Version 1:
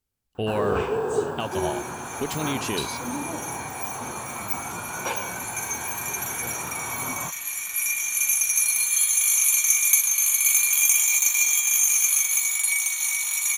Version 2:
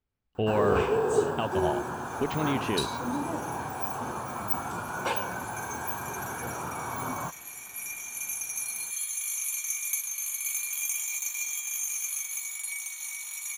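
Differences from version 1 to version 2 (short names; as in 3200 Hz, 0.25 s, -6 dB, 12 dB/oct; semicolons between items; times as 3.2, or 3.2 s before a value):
speech: add LPF 2600 Hz; second sound -12.0 dB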